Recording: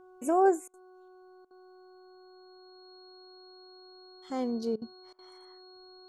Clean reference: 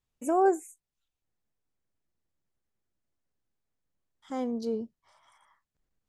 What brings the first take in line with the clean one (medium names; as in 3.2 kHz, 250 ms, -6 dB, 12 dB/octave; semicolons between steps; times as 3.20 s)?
de-hum 369.1 Hz, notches 4; band-stop 4.3 kHz, Q 30; interpolate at 0.68/1.45/4.76/5.13 s, 56 ms